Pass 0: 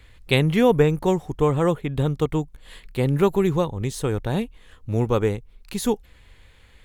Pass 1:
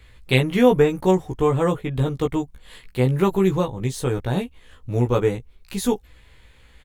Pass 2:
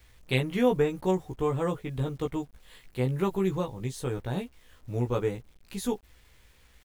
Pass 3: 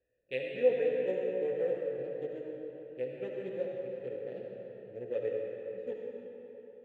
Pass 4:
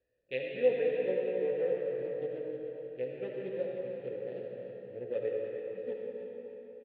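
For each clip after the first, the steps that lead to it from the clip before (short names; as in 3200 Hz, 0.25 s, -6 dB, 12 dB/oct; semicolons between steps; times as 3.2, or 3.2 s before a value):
doubler 16 ms -3 dB; gain -1 dB
bit-crush 9-bit; gain -8.5 dB
Wiener smoothing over 41 samples; vowel filter e; digital reverb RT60 3.8 s, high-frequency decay 0.7×, pre-delay 30 ms, DRR -1.5 dB; gain +1.5 dB
feedback echo 0.308 s, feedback 45%, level -9 dB; downsampling 11025 Hz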